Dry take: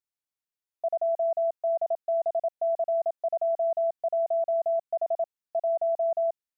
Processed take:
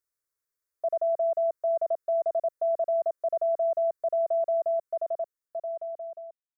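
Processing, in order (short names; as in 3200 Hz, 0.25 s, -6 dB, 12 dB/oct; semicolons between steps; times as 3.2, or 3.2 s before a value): ending faded out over 2.05 s; fixed phaser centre 790 Hz, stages 6; gain +6.5 dB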